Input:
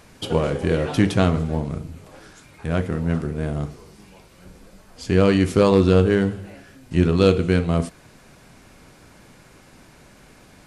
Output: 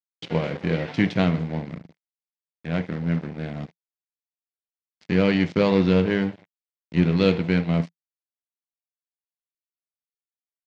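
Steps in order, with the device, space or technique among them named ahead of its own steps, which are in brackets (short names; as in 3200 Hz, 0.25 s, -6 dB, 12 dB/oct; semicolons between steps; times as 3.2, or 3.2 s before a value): 5.11–6.02 steep low-pass 8100 Hz; blown loudspeaker (crossover distortion -30.5 dBFS; speaker cabinet 130–4800 Hz, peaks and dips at 170 Hz +7 dB, 390 Hz -3 dB, 1200 Hz -5 dB, 2100 Hz +7 dB); high shelf 5400 Hz +6 dB; gain -2.5 dB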